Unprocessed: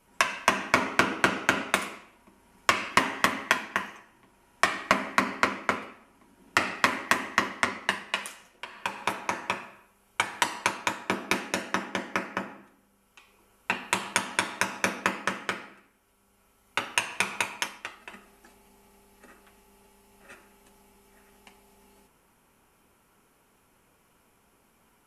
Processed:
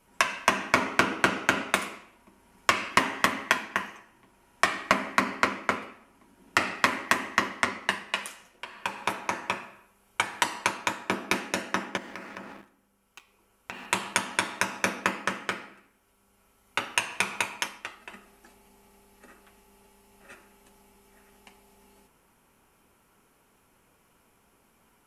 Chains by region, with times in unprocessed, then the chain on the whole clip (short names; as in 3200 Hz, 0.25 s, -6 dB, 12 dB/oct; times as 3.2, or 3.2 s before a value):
11.97–13.86 sample leveller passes 2 + compressor, threshold -38 dBFS
whole clip: dry